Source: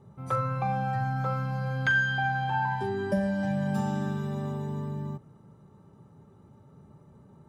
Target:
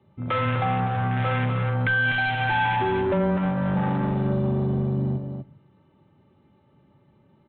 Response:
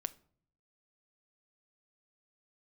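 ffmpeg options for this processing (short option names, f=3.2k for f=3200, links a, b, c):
-filter_complex "[0:a]highpass=110,afwtdn=0.0178,highshelf=f=1.8k:t=q:w=1.5:g=8,aecho=1:1:3.3:0.34,asplit=2[a][b];[b]alimiter=level_in=2dB:limit=-24dB:level=0:latency=1,volume=-2dB,volume=2dB[c];[a][c]amix=inputs=2:normalize=0,asoftclip=type=tanh:threshold=-26dB,afreqshift=-13,aecho=1:1:248:0.501,asplit=2[d][e];[1:a]atrim=start_sample=2205[f];[e][f]afir=irnorm=-1:irlink=0,volume=0.5dB[g];[d][g]amix=inputs=2:normalize=0,aresample=8000,aresample=44100"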